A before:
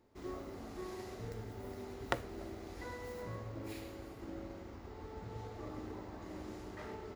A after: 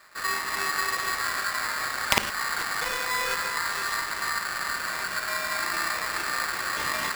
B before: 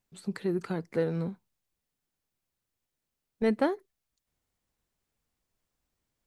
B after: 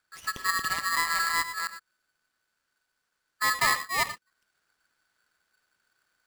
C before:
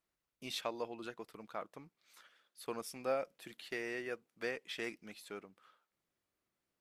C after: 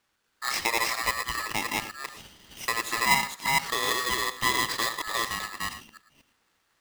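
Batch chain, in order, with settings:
delay that plays each chunk backwards 239 ms, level 0 dB
in parallel at +2.5 dB: downward compressor, threshold −42 dBFS
on the sum: high-frequency loss of the air 53 metres
reverb whose tail is shaped and stops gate 130 ms rising, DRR 10.5 dB
ring modulator with a square carrier 1,500 Hz
loudness normalisation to −27 LKFS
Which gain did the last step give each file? +8.0, −2.0, +7.5 decibels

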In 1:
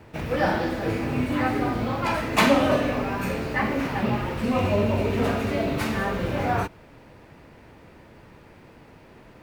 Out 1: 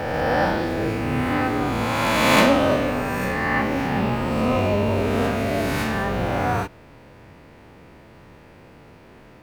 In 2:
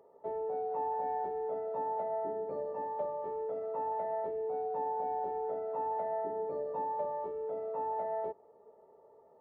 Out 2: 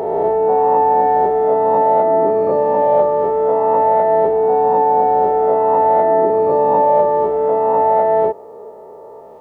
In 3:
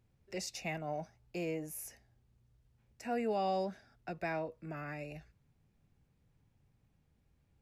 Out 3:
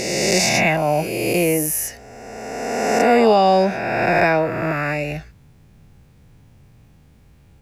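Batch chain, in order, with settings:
peak hold with a rise ahead of every peak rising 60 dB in 2.16 s
normalise the peak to −3 dBFS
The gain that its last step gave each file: −1.5, +20.5, +18.5 decibels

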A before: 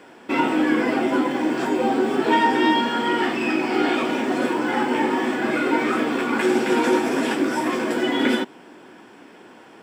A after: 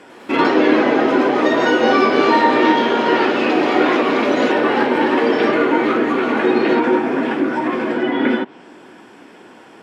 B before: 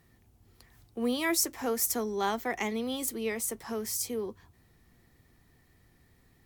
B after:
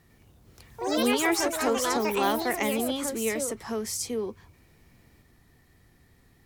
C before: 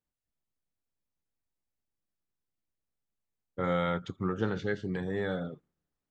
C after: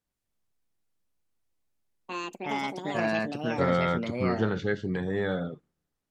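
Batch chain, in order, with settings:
treble cut that deepens with the level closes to 2,200 Hz, closed at −18.5 dBFS
delay with pitch and tempo change per echo 100 ms, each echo +4 semitones, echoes 3
level +3.5 dB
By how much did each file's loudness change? +5.5, +4.0, +3.5 LU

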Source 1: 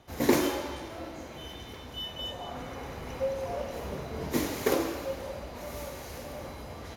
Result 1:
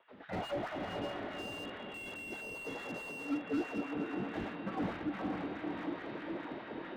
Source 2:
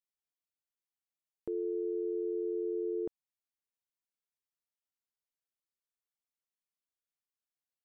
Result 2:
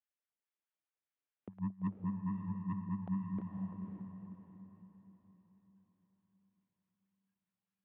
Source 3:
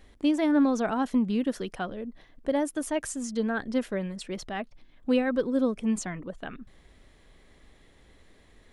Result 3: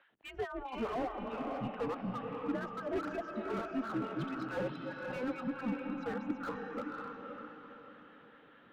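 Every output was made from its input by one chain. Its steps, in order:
feedback delay that plays each chunk backwards 170 ms, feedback 48%, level −5.5 dB
noise reduction from a noise print of the clip's start 13 dB
dynamic equaliser 950 Hz, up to +7 dB, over −53 dBFS, Q 4.3
reversed playback
downward compressor 8 to 1, threshold −40 dBFS
reversed playback
auto-filter high-pass sine 4.7 Hz 420–1,800 Hz
soft clipping −36.5 dBFS
on a send: feedback delay with all-pass diffusion 538 ms, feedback 41%, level −4 dB
on the sum: single-sideband voice off tune −250 Hz 370–3,600 Hz
slew-rate limiting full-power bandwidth 6.1 Hz
level +8 dB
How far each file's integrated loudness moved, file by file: −6.0, −5.0, −10.5 LU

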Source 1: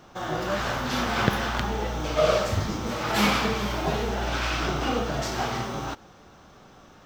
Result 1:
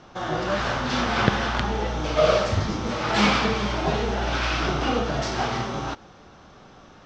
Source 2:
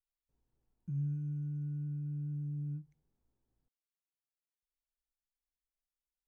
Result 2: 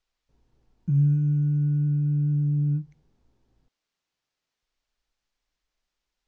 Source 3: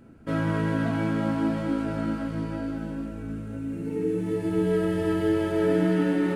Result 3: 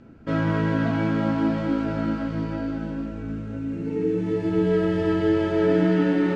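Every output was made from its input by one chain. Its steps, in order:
low-pass filter 6,200 Hz 24 dB per octave
loudness normalisation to −24 LKFS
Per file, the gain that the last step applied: +2.5, +15.0, +3.0 decibels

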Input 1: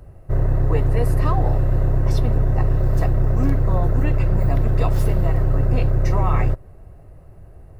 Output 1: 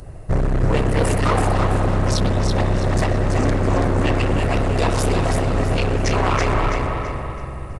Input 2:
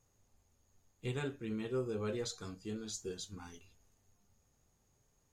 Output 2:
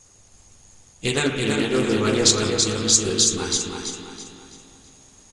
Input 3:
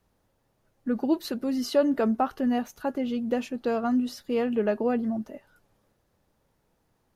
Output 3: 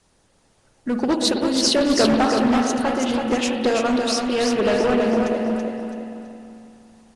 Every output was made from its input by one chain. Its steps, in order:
high-shelf EQ 3,000 Hz +12 dB
mains-hum notches 60/120 Hz
spring reverb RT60 2.6 s, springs 45/58 ms, chirp 70 ms, DRR 2.5 dB
in parallel at −1.5 dB: speech leveller within 4 dB 2 s
on the sum: hard clipping −13.5 dBFS
harmonic and percussive parts rebalanced percussive +7 dB
on a send: repeating echo 330 ms, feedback 37%, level −4.5 dB
on the sum: downsampling to 22,050 Hz
highs frequency-modulated by the lows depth 0.19 ms
loudness normalisation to −20 LKFS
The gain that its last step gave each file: −4.0, +6.5, −2.5 decibels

